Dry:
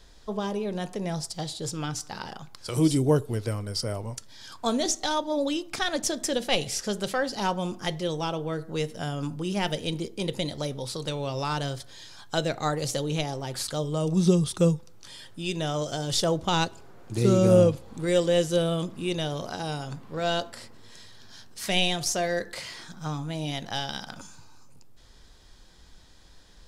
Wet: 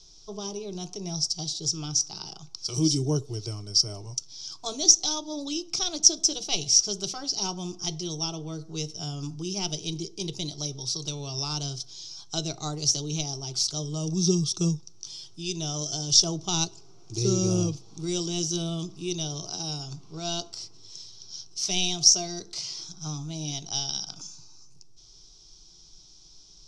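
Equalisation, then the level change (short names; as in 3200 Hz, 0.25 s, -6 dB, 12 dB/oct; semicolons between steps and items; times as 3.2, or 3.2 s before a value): synth low-pass 5700 Hz, resonance Q 9.1; bell 910 Hz -8.5 dB 0.79 oct; fixed phaser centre 350 Hz, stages 8; -1.5 dB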